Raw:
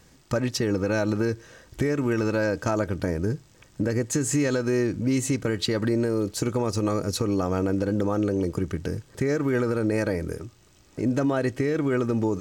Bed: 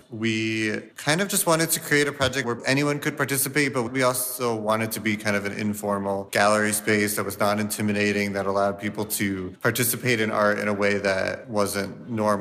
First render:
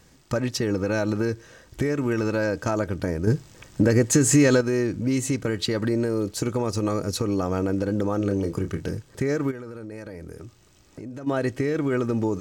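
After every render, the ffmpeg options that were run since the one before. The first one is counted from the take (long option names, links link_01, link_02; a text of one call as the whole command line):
ffmpeg -i in.wav -filter_complex "[0:a]asettb=1/sr,asplit=3[link_01][link_02][link_03];[link_01]atrim=end=3.274[link_04];[link_02]atrim=start=3.27:end=4.61,asetpts=PTS-STARTPTS,afade=type=in:duration=0.004:curve=qsin,afade=type=out:start_time=1.336:duration=0.004:curve=qsin,acontrast=72[link_05];[link_03]atrim=start=4.606[link_06];[link_04][link_05]acrossfade=duration=0.004:curve1=hsin:curve2=qsin[link_07];[link_07][link_06]acrossfade=duration=0.004:curve1=qsin:curve2=hsin,asettb=1/sr,asplit=3[link_08][link_09][link_10];[link_08]atrim=end=8.184[link_11];[link_09]atrim=start=8.18:end=8.93,asetpts=PTS-STARTPTS,afade=type=in:duration=0.004:curve=qsin,afade=type=out:start_time=0.746:duration=0.004:curve=qsin,asplit=2[link_12][link_13];[link_13]adelay=30,volume=-8dB[link_14];[link_12][link_14]amix=inputs=2:normalize=0,atrim=end_sample=33075[link_15];[link_10]atrim=start=8.926[link_16];[link_11][link_15]acrossfade=duration=0.004:curve1=hsin:curve2=qsin[link_17];[link_17][link_16]acrossfade=duration=0.004:curve1=qsin:curve2=hsin,asplit=3[link_18][link_19][link_20];[link_18]afade=type=out:start_time=9.5:duration=0.02[link_21];[link_19]acompressor=threshold=-35dB:ratio=5:attack=3.2:release=140:knee=1:detection=peak,afade=type=in:start_time=9.5:duration=0.02,afade=type=out:start_time=11.26:duration=0.02[link_22];[link_20]afade=type=in:start_time=11.26:duration=0.02[link_23];[link_21][link_22][link_23]amix=inputs=3:normalize=0" out.wav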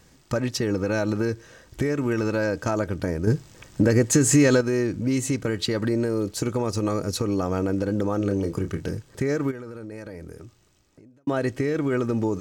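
ffmpeg -i in.wav -filter_complex "[0:a]asplit=2[link_01][link_02];[link_01]atrim=end=11.27,asetpts=PTS-STARTPTS,afade=type=out:start_time=10.19:duration=1.08[link_03];[link_02]atrim=start=11.27,asetpts=PTS-STARTPTS,afade=type=in:duration=0.004:curve=hsin[link_04];[link_03][link_04]concat=n=2:v=0:a=1" out.wav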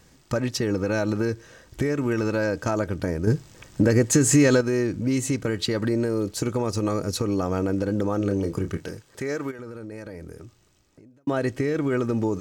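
ffmpeg -i in.wav -filter_complex "[0:a]asettb=1/sr,asplit=3[link_01][link_02][link_03];[link_01]atrim=end=8.774[link_04];[link_02]atrim=start=8.77:end=9.59,asetpts=PTS-STARTPTS,afade=type=in:duration=0.004:curve=qsin,afade=type=out:start_time=0.816:duration=0.004:curve=qsin,lowshelf=frequency=290:gain=-11[link_05];[link_03]atrim=start=9.586[link_06];[link_04][link_05]acrossfade=duration=0.004:curve1=hsin:curve2=qsin[link_07];[link_07][link_06]acrossfade=duration=0.004:curve1=qsin:curve2=hsin" out.wav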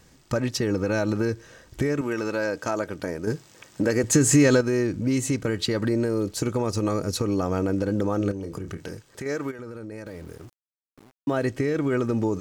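ffmpeg -i in.wav -filter_complex "[0:a]asettb=1/sr,asplit=3[link_01][link_02][link_03];[link_01]atrim=end=2.014[link_04];[link_02]atrim=start=2.01:end=4.04,asetpts=PTS-STARTPTS,afade=type=in:duration=0.004:curve=qsin,afade=type=out:start_time=2.026:duration=0.004:curve=qsin,highpass=frequency=350:poles=1[link_05];[link_03]atrim=start=4.036[link_06];[link_04][link_05]acrossfade=duration=0.004:curve1=hsin:curve2=qsin[link_07];[link_07][link_06]acrossfade=duration=0.004:curve1=qsin:curve2=hsin,asettb=1/sr,asplit=3[link_08][link_09][link_10];[link_08]atrim=end=8.314[link_11];[link_09]atrim=start=8.31:end=9.26,asetpts=PTS-STARTPTS,afade=type=in:duration=0.004:curve=qsin,afade=type=out:start_time=0.946:duration=0.004:curve=qsin,acompressor=threshold=-29dB:ratio=6:attack=3.2:release=140:knee=1:detection=peak[link_12];[link_10]atrim=start=9.256[link_13];[link_11][link_12]acrossfade=duration=0.004:curve1=hsin:curve2=qsin[link_14];[link_14][link_13]acrossfade=duration=0.004:curve1=qsin:curve2=hsin,asettb=1/sr,asplit=3[link_15][link_16][link_17];[link_15]atrim=end=10.064[link_18];[link_16]atrim=start=10.06:end=11.47,asetpts=PTS-STARTPTS,afade=type=in:duration=0.004:curve=qsin,afade=type=out:start_time=1.406:duration=0.004:curve=qsin,aeval=exprs='val(0)*gte(abs(val(0)),0.00422)':channel_layout=same[link_19];[link_17]atrim=start=11.466[link_20];[link_18][link_19]acrossfade=duration=0.004:curve1=hsin:curve2=qsin[link_21];[link_21][link_20]acrossfade=duration=0.004:curve1=qsin:curve2=hsin" out.wav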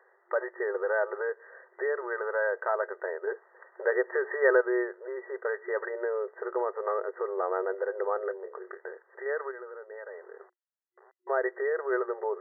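ffmpeg -i in.wav -af "aemphasis=mode=production:type=bsi,afftfilt=real='re*between(b*sr/4096,360,2000)':imag='im*between(b*sr/4096,360,2000)':win_size=4096:overlap=0.75" out.wav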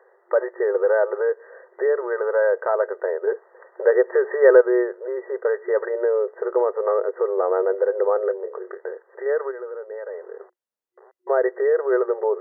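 ffmpeg -i in.wav -af "equalizer=frequency=250:width_type=o:width=1:gain=5,equalizer=frequency=500:width_type=o:width=1:gain=10,equalizer=frequency=1000:width_type=o:width=1:gain=3" out.wav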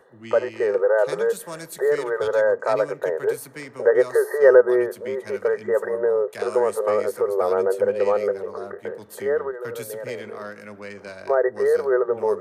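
ffmpeg -i in.wav -i bed.wav -filter_complex "[1:a]volume=-15dB[link_01];[0:a][link_01]amix=inputs=2:normalize=0" out.wav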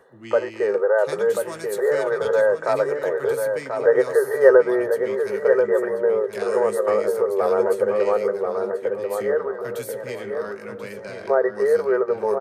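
ffmpeg -i in.wav -filter_complex "[0:a]asplit=2[link_01][link_02];[link_02]adelay=15,volume=-12dB[link_03];[link_01][link_03]amix=inputs=2:normalize=0,asplit=2[link_04][link_05];[link_05]adelay=1036,lowpass=frequency=2500:poles=1,volume=-5.5dB,asplit=2[link_06][link_07];[link_07]adelay=1036,lowpass=frequency=2500:poles=1,volume=0.26,asplit=2[link_08][link_09];[link_09]adelay=1036,lowpass=frequency=2500:poles=1,volume=0.26[link_10];[link_04][link_06][link_08][link_10]amix=inputs=4:normalize=0" out.wav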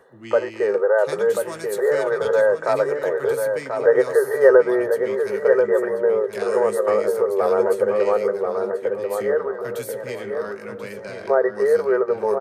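ffmpeg -i in.wav -af "volume=1dB,alimiter=limit=-2dB:level=0:latency=1" out.wav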